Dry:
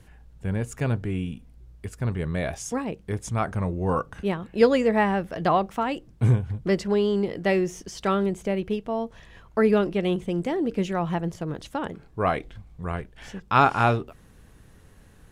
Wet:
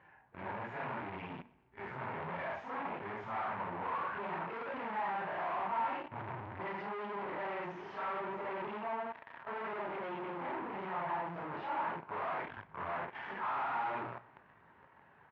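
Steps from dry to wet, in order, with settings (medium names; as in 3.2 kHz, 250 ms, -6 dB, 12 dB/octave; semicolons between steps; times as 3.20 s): phase randomisation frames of 200 ms; bass shelf 320 Hz -7 dB; hum notches 60/120/180/240/300/360 Hz; waveshaping leveller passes 5; 8.80–11.54 s: compression 6:1, threshold -39 dBFS, peak gain reduction 25 dB; valve stage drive 50 dB, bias 0.7; cabinet simulation 190–2200 Hz, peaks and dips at 200 Hz -6 dB, 290 Hz -6 dB, 470 Hz -8 dB, 930 Hz +9 dB; feedback delay 124 ms, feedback 52%, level -23 dB; trim +13 dB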